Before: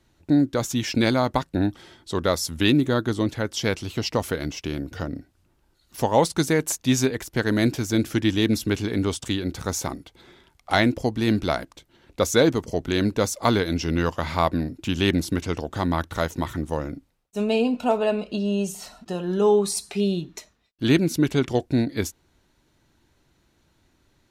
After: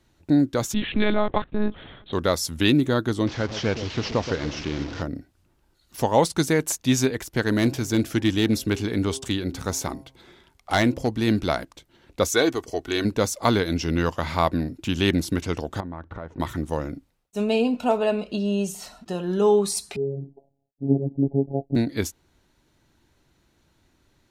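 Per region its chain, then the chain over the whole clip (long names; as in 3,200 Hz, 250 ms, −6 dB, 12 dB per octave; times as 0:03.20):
0:00.74–0:02.13: mu-law and A-law mismatch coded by mu + one-pitch LPC vocoder at 8 kHz 210 Hz
0:03.27–0:05.02: linear delta modulator 32 kbit/s, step −30 dBFS + delay that swaps between a low-pass and a high-pass 123 ms, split 910 Hz, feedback 54%, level −10 dB + highs frequency-modulated by the lows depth 0.13 ms
0:07.43–0:11.10: gain into a clipping stage and back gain 12.5 dB + hum removal 133.2 Hz, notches 8
0:12.28–0:13.05: low-shelf EQ 290 Hz −10.5 dB + comb filter 2.7 ms, depth 46%
0:15.80–0:16.40: low-pass filter 1,400 Hz + downward compressor, threshold −31 dBFS
0:19.96–0:21.76: Butterworth low-pass 820 Hz 96 dB per octave + phases set to zero 138 Hz
whole clip: no processing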